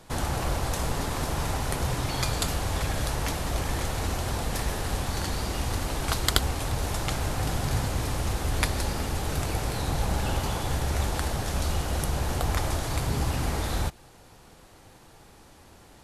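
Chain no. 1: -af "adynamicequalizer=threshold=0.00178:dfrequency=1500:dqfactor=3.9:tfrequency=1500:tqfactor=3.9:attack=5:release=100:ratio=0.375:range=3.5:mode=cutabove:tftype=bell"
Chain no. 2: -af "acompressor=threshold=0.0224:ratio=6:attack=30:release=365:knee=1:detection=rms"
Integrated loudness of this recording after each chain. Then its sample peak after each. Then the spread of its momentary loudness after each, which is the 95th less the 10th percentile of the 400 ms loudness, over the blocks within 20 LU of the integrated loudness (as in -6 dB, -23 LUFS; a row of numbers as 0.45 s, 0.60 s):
-29.5 LUFS, -37.5 LUFS; -3.5 dBFS, -14.5 dBFS; 3 LU, 16 LU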